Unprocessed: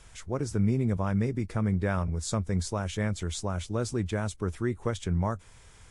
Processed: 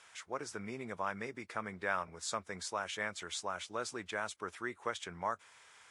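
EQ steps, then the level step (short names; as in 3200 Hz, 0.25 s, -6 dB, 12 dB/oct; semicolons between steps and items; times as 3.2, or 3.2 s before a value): HPF 1300 Hz 12 dB/oct; tilt -3.5 dB/oct; +5.0 dB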